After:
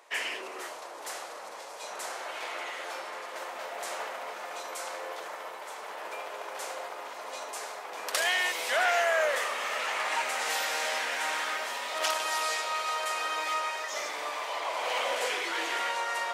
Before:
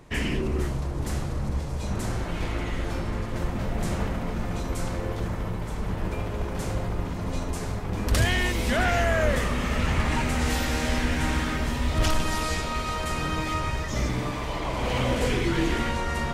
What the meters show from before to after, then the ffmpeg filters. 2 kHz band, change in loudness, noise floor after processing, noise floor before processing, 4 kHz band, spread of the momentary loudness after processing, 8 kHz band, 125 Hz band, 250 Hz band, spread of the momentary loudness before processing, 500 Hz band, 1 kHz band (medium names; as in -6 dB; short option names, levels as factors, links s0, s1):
0.0 dB, -4.0 dB, -43 dBFS, -31 dBFS, 0.0 dB, 13 LU, 0.0 dB, under -40 dB, -24.0 dB, 7 LU, -4.0 dB, 0.0 dB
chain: -af "highpass=f=570:w=0.5412,highpass=f=570:w=1.3066"